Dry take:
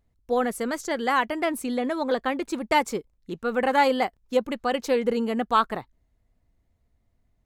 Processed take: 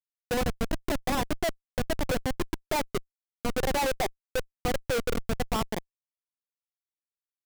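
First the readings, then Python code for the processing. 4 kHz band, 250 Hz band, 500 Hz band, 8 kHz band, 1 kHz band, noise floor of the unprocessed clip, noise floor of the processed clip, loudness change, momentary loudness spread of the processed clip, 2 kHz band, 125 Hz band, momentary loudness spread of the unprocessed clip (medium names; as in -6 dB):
-1.5 dB, -5.5 dB, -6.0 dB, +2.0 dB, -8.5 dB, -70 dBFS, under -85 dBFS, -5.5 dB, 7 LU, -5.5 dB, +11.0 dB, 8 LU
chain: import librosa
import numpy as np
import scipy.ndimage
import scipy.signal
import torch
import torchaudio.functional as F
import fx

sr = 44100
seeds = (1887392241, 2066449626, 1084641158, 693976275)

y = fx.spec_erase(x, sr, start_s=0.64, length_s=0.3, low_hz=720.0, high_hz=1500.0)
y = fx.cabinet(y, sr, low_hz=370.0, low_slope=12, high_hz=2300.0, hz=(380.0, 670.0, 1700.0), db=(8, 6, -3))
y = fx.schmitt(y, sr, flips_db=-21.0)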